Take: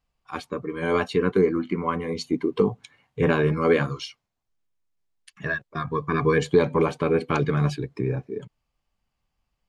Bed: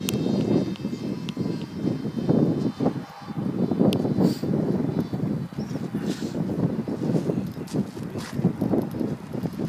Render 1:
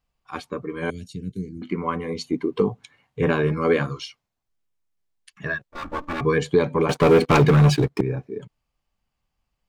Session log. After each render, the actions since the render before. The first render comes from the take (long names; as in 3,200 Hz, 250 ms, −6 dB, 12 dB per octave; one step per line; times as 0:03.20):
0:00.90–0:01.62: Chebyshev band-stop filter 140–6,600 Hz
0:05.71–0:06.21: lower of the sound and its delayed copy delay 3.5 ms
0:06.89–0:08.01: leveller curve on the samples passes 3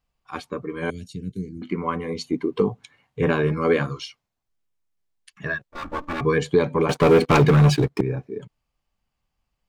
no processing that can be heard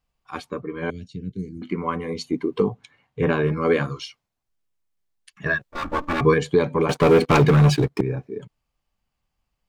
0:00.61–0:01.39: high-frequency loss of the air 130 metres
0:02.69–0:03.66: high-shelf EQ 6,700 Hz −8.5 dB
0:05.46–0:06.34: clip gain +4.5 dB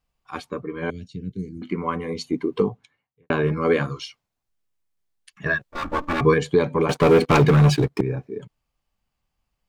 0:02.62–0:03.30: fade out quadratic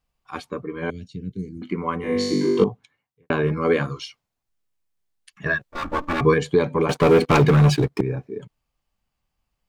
0:02.01–0:02.64: flutter between parallel walls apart 3.5 metres, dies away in 1.2 s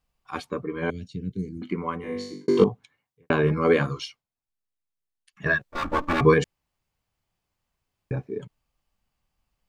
0:01.53–0:02.48: fade out
0:04.04–0:05.48: duck −11 dB, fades 0.19 s
0:06.44–0:08.11: fill with room tone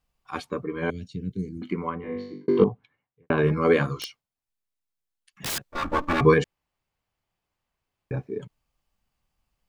0:01.89–0:03.38: high-frequency loss of the air 340 metres
0:03.96–0:05.61: wrap-around overflow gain 24.5 dB
0:06.42–0:08.14: bass and treble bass −4 dB, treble −5 dB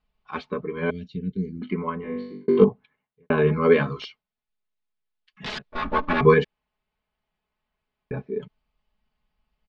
low-pass filter 4,100 Hz 24 dB per octave
comb filter 4.7 ms, depth 61%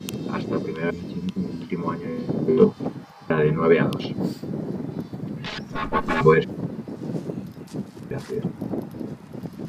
mix in bed −5.5 dB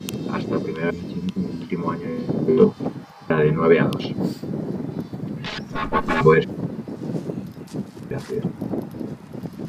level +2 dB
brickwall limiter −3 dBFS, peak gain reduction 1.5 dB